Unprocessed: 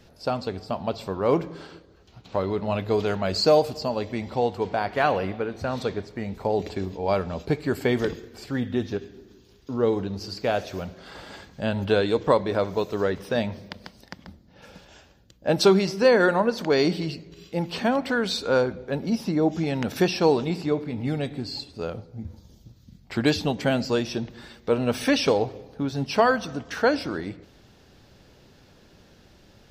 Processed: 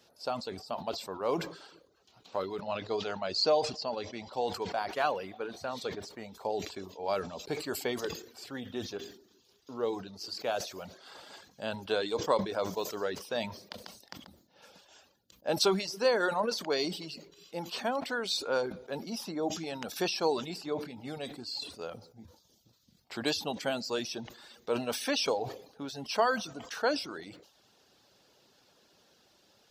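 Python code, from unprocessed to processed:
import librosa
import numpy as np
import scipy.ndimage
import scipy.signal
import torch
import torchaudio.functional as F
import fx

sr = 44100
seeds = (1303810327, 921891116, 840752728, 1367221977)

y = fx.lowpass(x, sr, hz=6100.0, slope=24, at=(2.6, 4.33))
y = fx.dereverb_blind(y, sr, rt60_s=0.53)
y = fx.highpass(y, sr, hz=940.0, slope=6)
y = fx.peak_eq(y, sr, hz=2000.0, db=-7.0, octaves=0.97)
y = fx.sustainer(y, sr, db_per_s=97.0)
y = F.gain(torch.from_numpy(y), -2.0).numpy()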